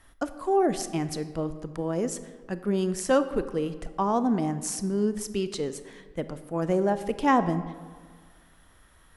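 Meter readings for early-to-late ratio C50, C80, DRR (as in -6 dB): 12.5 dB, 14.0 dB, 11.5 dB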